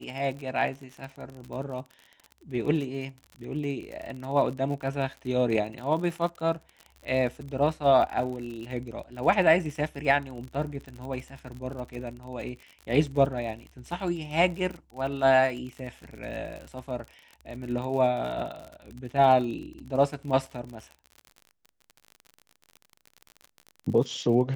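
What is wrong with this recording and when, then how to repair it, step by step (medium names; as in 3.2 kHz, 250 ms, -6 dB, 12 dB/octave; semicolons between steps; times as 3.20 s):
crackle 49 per s -35 dBFS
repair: de-click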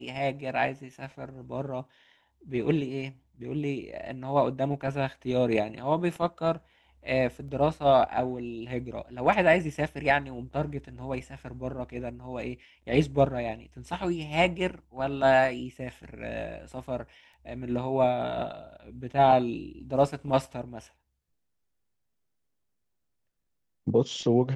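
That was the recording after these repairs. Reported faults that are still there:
nothing left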